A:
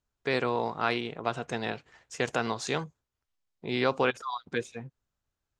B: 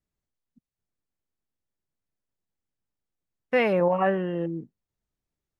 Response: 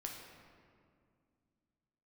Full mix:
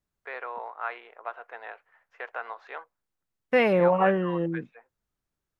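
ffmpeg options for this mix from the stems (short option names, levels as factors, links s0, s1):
-filter_complex "[0:a]lowpass=f=1700:w=0.5412,lowpass=f=1700:w=1.3066,crystalizer=i=8.5:c=0,highpass=f=530:w=0.5412,highpass=f=530:w=1.3066,volume=0.398[s0];[1:a]volume=1.12[s1];[s0][s1]amix=inputs=2:normalize=0"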